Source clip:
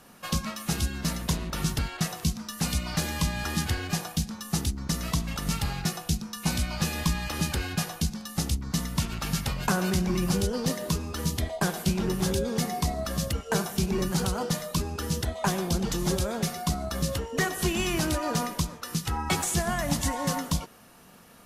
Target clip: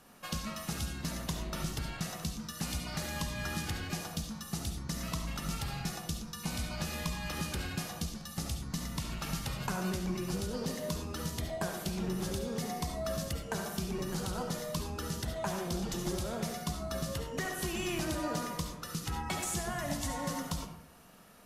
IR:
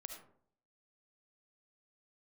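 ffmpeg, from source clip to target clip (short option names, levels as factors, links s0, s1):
-filter_complex "[0:a]acompressor=threshold=0.0501:ratio=6[s0];[1:a]atrim=start_sample=2205[s1];[s0][s1]afir=irnorm=-1:irlink=0"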